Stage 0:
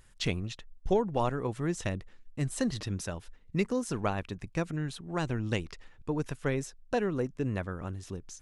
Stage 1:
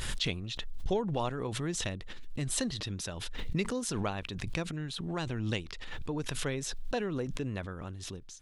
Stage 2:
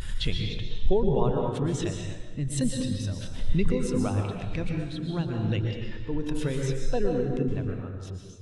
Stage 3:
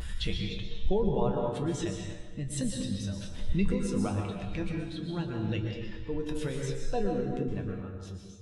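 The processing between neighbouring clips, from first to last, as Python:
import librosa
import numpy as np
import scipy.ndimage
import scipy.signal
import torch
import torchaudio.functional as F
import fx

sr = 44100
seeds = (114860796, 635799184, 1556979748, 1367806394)

y1 = fx.peak_eq(x, sr, hz=3600.0, db=8.5, octaves=0.86)
y1 = fx.pre_swell(y1, sr, db_per_s=27.0)
y1 = y1 * librosa.db_to_amplitude(-4.5)
y2 = fx.rev_plate(y1, sr, seeds[0], rt60_s=1.8, hf_ratio=0.8, predelay_ms=105, drr_db=-0.5)
y2 = fx.spectral_expand(y2, sr, expansion=1.5)
y2 = y2 * librosa.db_to_amplitude(5.5)
y3 = fx.comb_fb(y2, sr, f0_hz=66.0, decay_s=0.19, harmonics='odd', damping=0.0, mix_pct=80)
y3 = y3 * librosa.db_to_amplitude(4.0)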